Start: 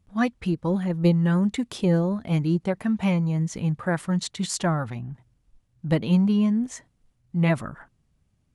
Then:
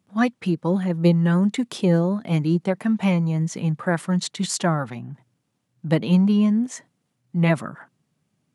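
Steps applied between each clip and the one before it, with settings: high-pass 140 Hz 24 dB/octave; trim +3 dB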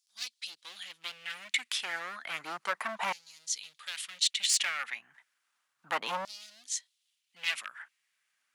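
hard clipper -20.5 dBFS, distortion -8 dB; LFO high-pass saw down 0.32 Hz 960–5100 Hz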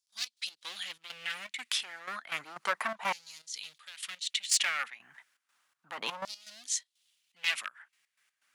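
in parallel at -1 dB: compression, threshold -41 dBFS, peak gain reduction 17 dB; on the sum: trance gate ".x.x.xxx.xxx.xx." 123 bpm -12 dB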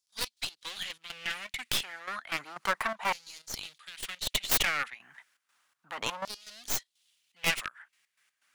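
tracing distortion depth 0.15 ms; trim +2 dB

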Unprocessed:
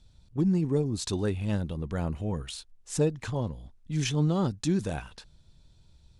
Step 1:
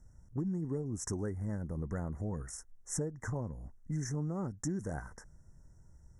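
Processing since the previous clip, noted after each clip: Chebyshev band-stop 2–5.5 kHz, order 5; compression 6:1, threshold -33 dBFS, peak gain reduction 12.5 dB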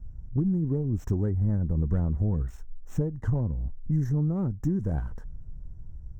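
tilt EQ -4 dB/octave; sliding maximum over 3 samples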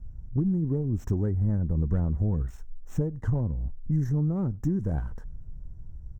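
echo from a far wall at 17 m, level -30 dB

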